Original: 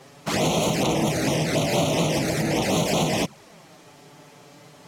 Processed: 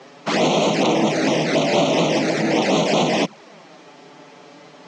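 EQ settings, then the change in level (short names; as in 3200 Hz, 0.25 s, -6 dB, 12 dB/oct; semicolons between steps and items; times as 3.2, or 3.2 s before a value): HPF 190 Hz 24 dB/oct; LPF 7200 Hz 24 dB/oct; air absorption 77 m; +6.0 dB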